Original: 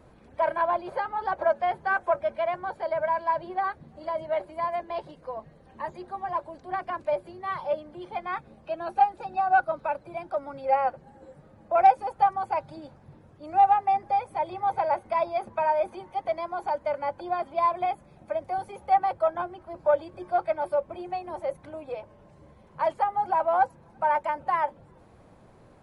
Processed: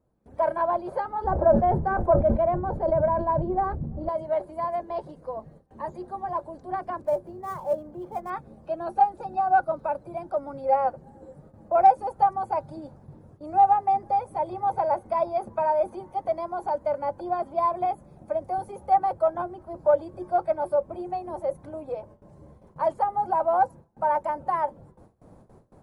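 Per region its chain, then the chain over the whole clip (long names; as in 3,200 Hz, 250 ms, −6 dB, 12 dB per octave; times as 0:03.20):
0:01.24–0:04.09: spectral tilt −4.5 dB per octave + level that may fall only so fast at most 97 dB per second
0:07.01–0:08.30: gap after every zero crossing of 0.057 ms + high-shelf EQ 3,000 Hz −11.5 dB
whole clip: noise gate with hold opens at −44 dBFS; parametric band 2,700 Hz −14.5 dB 2.1 octaves; level +4.5 dB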